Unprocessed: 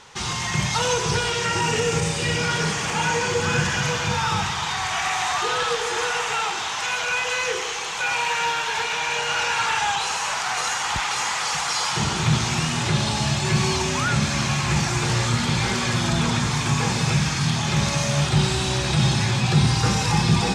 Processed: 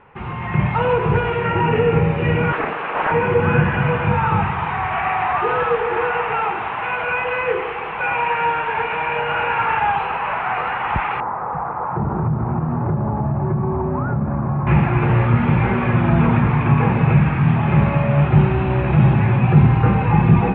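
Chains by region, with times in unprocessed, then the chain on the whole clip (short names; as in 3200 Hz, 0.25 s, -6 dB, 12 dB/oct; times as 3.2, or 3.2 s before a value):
2.53–3.12 speaker cabinet 440–5000 Hz, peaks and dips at 650 Hz -7 dB, 1400 Hz +3 dB, 2000 Hz -7 dB, 4000 Hz +6 dB + Doppler distortion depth 0.56 ms
11.2–14.67 LPF 1200 Hz 24 dB/oct + compressor, threshold -24 dBFS
whole clip: AGC gain up to 6 dB; elliptic low-pass 2600 Hz, stop band 60 dB; tilt shelf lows +6 dB, about 1500 Hz; gain -2.5 dB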